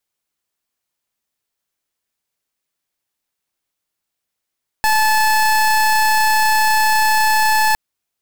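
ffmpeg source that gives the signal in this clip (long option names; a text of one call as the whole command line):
ffmpeg -f lavfi -i "aevalsrc='0.2*(2*lt(mod(868*t,1),0.27)-1)':duration=2.91:sample_rate=44100" out.wav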